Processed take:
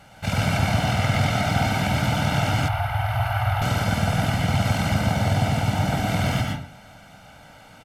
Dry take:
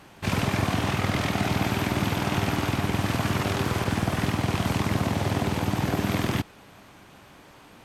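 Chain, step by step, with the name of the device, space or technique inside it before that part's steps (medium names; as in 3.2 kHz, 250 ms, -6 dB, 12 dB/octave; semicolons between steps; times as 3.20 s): microphone above a desk (comb 1.4 ms, depth 79%; reverberation RT60 0.45 s, pre-delay 106 ms, DRR 0.5 dB); 2.68–3.62 s: FFT filter 120 Hz 0 dB, 190 Hz -28 dB, 380 Hz -26 dB, 730 Hz +3 dB, 2.9 kHz -5 dB, 7.5 kHz -19 dB, 11 kHz -3 dB; trim -1.5 dB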